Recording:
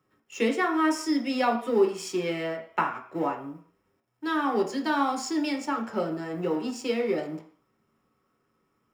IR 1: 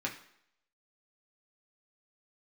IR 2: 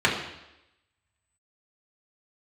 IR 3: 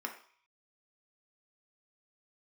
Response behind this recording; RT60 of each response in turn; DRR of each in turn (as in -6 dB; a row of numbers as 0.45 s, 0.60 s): 3; no single decay rate, 0.90 s, 0.50 s; -2.0 dB, -4.5 dB, 2.0 dB